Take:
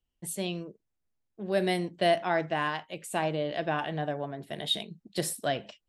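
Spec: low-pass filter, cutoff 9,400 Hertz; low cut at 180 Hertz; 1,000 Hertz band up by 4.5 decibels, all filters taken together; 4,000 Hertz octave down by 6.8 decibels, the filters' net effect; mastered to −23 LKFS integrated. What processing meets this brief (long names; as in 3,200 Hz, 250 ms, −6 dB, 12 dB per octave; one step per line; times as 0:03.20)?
high-pass filter 180 Hz
low-pass filter 9,400 Hz
parametric band 1,000 Hz +7 dB
parametric band 4,000 Hz −9 dB
level +6.5 dB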